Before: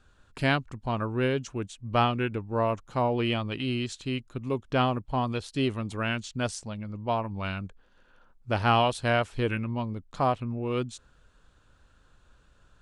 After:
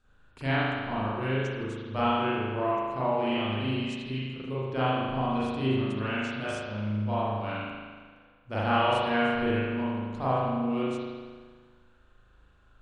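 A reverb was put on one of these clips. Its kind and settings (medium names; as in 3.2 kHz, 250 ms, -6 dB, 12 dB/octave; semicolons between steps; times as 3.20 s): spring tank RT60 1.6 s, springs 38 ms, chirp 45 ms, DRR -10 dB; trim -10.5 dB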